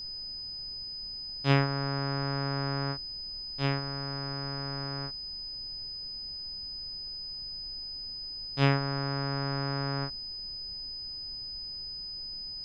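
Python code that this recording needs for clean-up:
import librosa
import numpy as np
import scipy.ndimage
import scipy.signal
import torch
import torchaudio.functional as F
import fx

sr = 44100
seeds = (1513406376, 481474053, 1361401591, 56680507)

y = fx.notch(x, sr, hz=5000.0, q=30.0)
y = fx.noise_reduce(y, sr, print_start_s=0.83, print_end_s=1.33, reduce_db=30.0)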